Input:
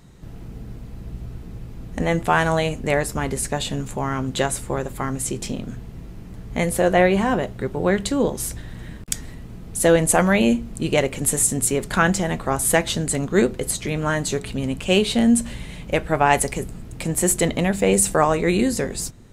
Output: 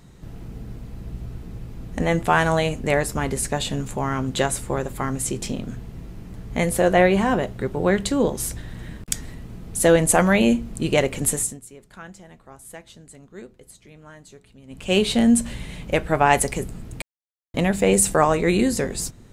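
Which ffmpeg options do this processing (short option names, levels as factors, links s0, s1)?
-filter_complex "[0:a]asplit=5[s0][s1][s2][s3][s4];[s0]atrim=end=11.6,asetpts=PTS-STARTPTS,afade=t=out:st=11.25:d=0.35:silence=0.0749894[s5];[s1]atrim=start=11.6:end=14.67,asetpts=PTS-STARTPTS,volume=0.075[s6];[s2]atrim=start=14.67:end=17.02,asetpts=PTS-STARTPTS,afade=t=in:d=0.35:silence=0.0749894,afade=t=out:st=2.346:d=0.004:c=hsin[s7];[s3]atrim=start=17.02:end=17.54,asetpts=PTS-STARTPTS,volume=0[s8];[s4]atrim=start=17.54,asetpts=PTS-STARTPTS,afade=t=in:d=0.004:c=hsin[s9];[s5][s6][s7][s8][s9]concat=n=5:v=0:a=1"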